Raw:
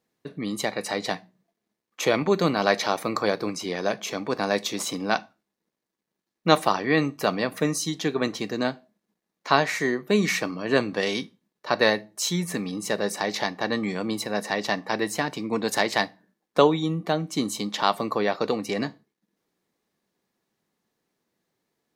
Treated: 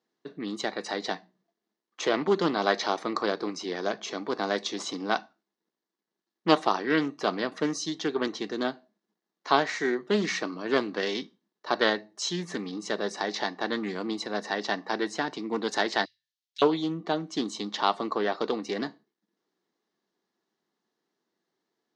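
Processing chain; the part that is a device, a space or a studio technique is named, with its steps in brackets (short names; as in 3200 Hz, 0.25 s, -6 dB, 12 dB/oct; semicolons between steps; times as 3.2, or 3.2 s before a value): 16.05–16.62 inverse Chebyshev band-stop 200–1200 Hz, stop band 50 dB; full-range speaker at full volume (Doppler distortion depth 0.23 ms; speaker cabinet 240–6200 Hz, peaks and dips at 360 Hz +3 dB, 540 Hz -5 dB, 2400 Hz -7 dB); gain -2 dB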